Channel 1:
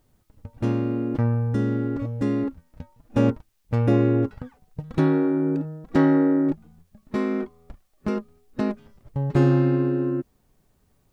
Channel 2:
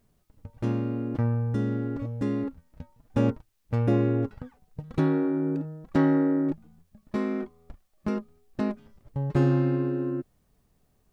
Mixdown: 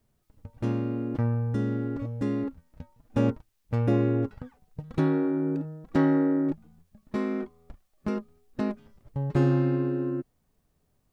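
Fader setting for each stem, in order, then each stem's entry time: −11.5, −5.5 decibels; 0.00, 0.00 seconds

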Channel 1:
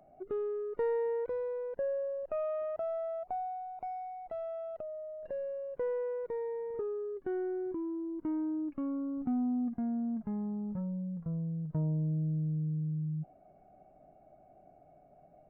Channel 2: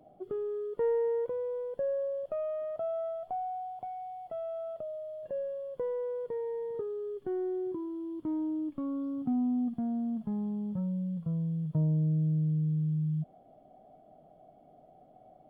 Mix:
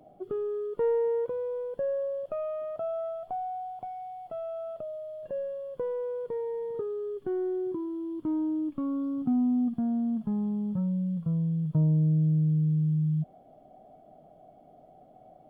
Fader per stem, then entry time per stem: −10.0, +3.0 decibels; 0.00, 0.00 seconds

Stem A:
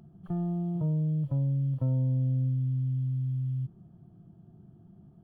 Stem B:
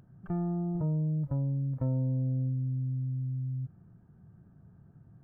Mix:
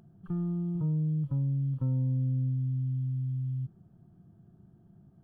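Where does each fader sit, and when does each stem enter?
−4.5, −8.5 decibels; 0.00, 0.00 seconds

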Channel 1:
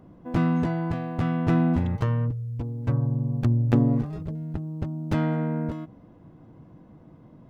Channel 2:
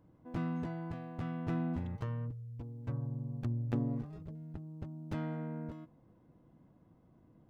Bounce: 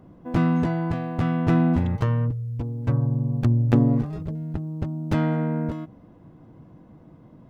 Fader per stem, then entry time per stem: +1.0, −4.0 decibels; 0.00, 0.00 seconds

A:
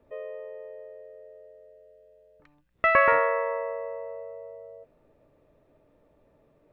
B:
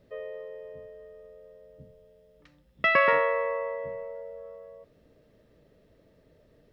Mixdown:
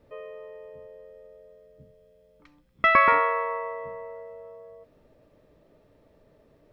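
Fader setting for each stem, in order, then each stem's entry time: +1.0, −2.5 decibels; 0.00, 0.00 seconds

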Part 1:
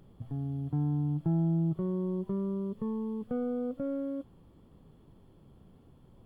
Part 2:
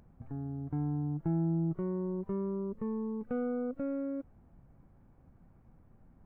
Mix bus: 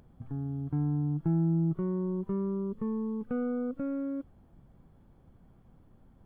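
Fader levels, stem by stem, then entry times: −9.5, +1.0 decibels; 0.00, 0.00 seconds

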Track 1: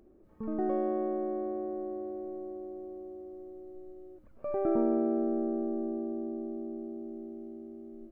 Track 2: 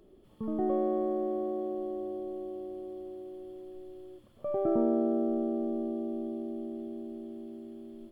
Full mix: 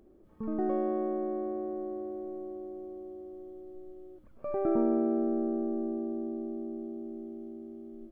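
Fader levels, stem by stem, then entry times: +0.5, −18.0 decibels; 0.00, 0.00 seconds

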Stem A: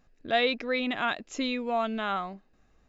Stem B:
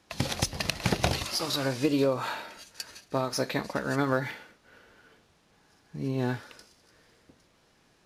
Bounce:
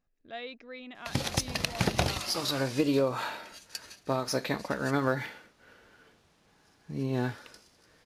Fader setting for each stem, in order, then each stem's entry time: −15.5, −1.0 decibels; 0.00, 0.95 seconds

